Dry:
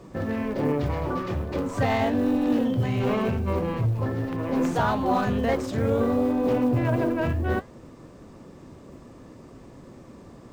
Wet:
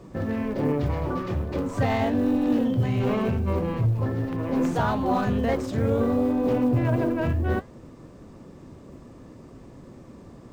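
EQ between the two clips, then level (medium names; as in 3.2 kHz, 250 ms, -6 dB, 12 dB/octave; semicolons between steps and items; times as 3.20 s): bass shelf 350 Hz +4 dB; -2.0 dB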